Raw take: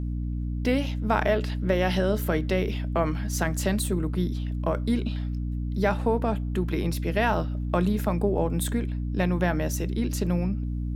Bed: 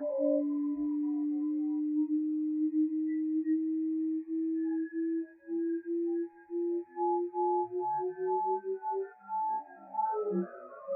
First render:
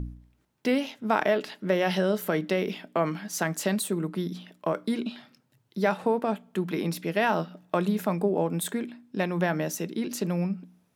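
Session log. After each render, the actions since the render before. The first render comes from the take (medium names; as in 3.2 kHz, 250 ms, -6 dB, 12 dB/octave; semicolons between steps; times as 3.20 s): de-hum 60 Hz, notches 5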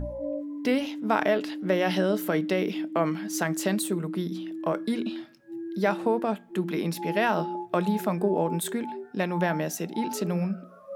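add bed -3.5 dB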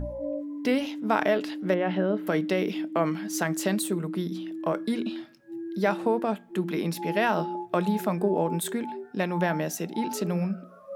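1.74–2.27 s: distance through air 490 m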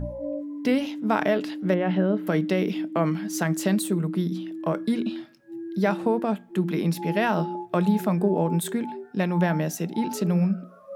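dynamic bell 150 Hz, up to +7 dB, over -42 dBFS, Q 1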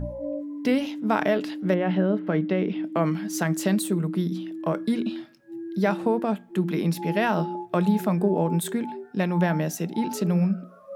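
2.19–2.84 s: distance through air 280 m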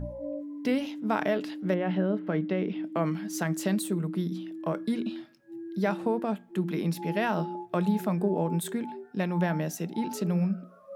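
trim -4.5 dB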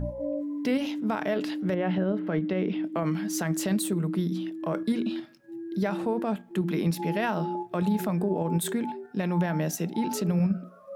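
in parallel at +1 dB: level held to a coarse grid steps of 13 dB; on the sum: peak limiter -17.5 dBFS, peak gain reduction 9.5 dB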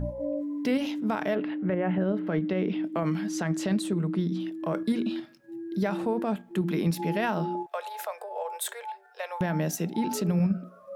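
1.35–2.01 s: low-pass 2.5 kHz 24 dB/octave; 3.29–4.40 s: distance through air 65 m; 7.66–9.41 s: steep high-pass 490 Hz 72 dB/octave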